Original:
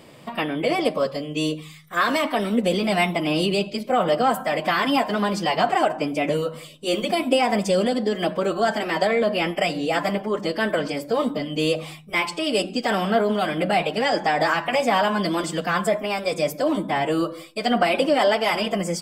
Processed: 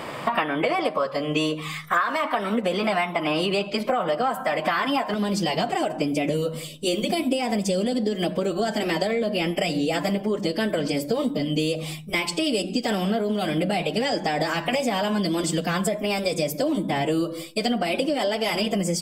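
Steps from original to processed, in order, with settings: bell 1200 Hz +12.5 dB 2 oct, from 3.9 s +5 dB, from 5.14 s -10.5 dB; compressor 16:1, threshold -28 dBFS, peak gain reduction 23.5 dB; gain +8 dB

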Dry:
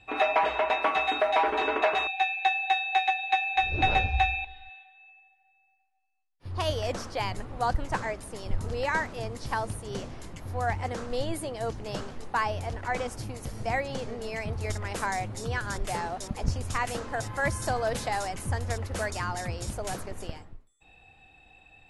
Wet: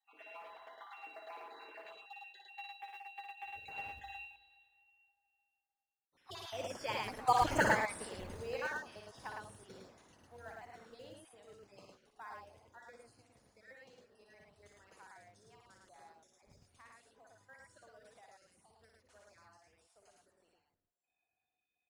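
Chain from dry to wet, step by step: random spectral dropouts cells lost 39%; Doppler pass-by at 7.51, 15 m/s, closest 2.4 m; in parallel at -9 dB: short-mantissa float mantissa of 2-bit; on the sum: HPF 310 Hz 6 dB/oct; loudspeakers at several distances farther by 20 m -5 dB, 37 m -2 dB; on a send at -23 dB: reverb RT60 3.1 s, pre-delay 5 ms; on the sum: gain +3 dB

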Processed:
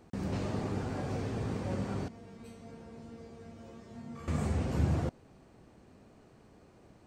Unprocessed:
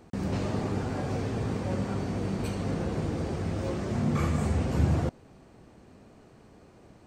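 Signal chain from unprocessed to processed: 2.08–4.28 resonator 230 Hz, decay 0.41 s, harmonics all, mix 90%; gain -4.5 dB

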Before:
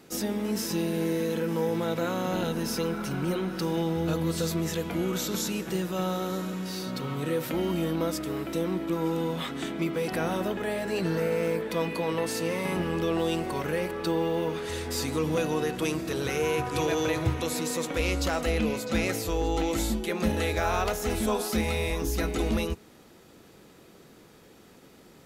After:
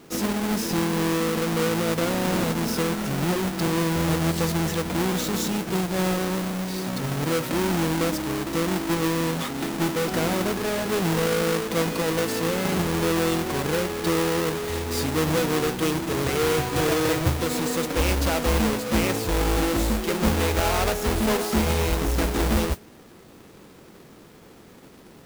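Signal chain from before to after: half-waves squared off; modulation noise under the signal 17 dB

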